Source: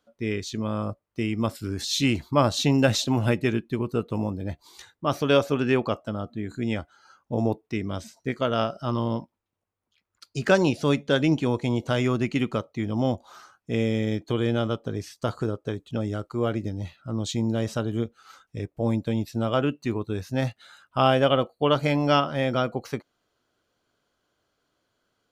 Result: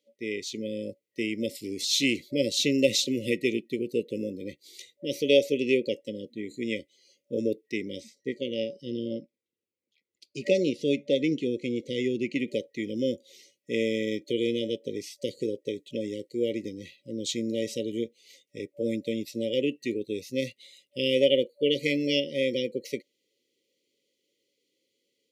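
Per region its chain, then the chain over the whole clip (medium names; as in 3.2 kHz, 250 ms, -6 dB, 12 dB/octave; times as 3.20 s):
8.00–12.48 s: low-pass 2.8 kHz 6 dB/octave + Shepard-style phaser falling 1.6 Hz
whole clip: high-pass 320 Hz 12 dB/octave; FFT band-reject 580–1900 Hz; level rider gain up to 3.5 dB; trim -2 dB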